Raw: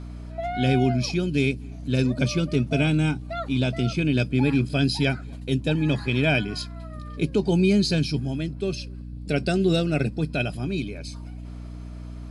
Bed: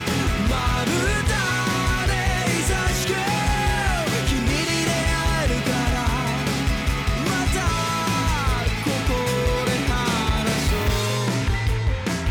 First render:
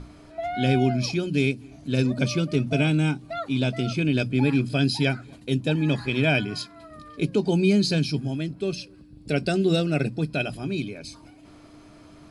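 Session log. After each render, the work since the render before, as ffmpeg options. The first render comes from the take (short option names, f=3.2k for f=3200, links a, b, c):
-af "bandreject=f=60:t=h:w=6,bandreject=f=120:t=h:w=6,bandreject=f=180:t=h:w=6,bandreject=f=240:t=h:w=6"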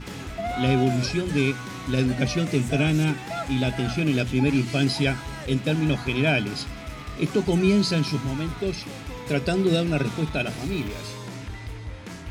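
-filter_complex "[1:a]volume=-14dB[a];[0:a][a]amix=inputs=2:normalize=0"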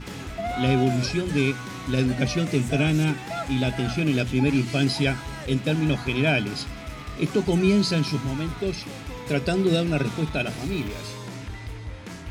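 -af anull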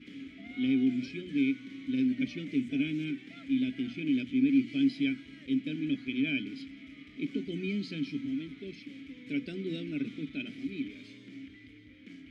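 -filter_complex "[0:a]asplit=3[a][b][c];[a]bandpass=f=270:t=q:w=8,volume=0dB[d];[b]bandpass=f=2.29k:t=q:w=8,volume=-6dB[e];[c]bandpass=f=3.01k:t=q:w=8,volume=-9dB[f];[d][e][f]amix=inputs=3:normalize=0"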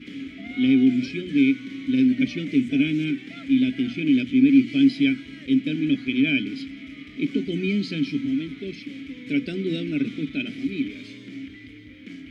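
-af "volume=9.5dB"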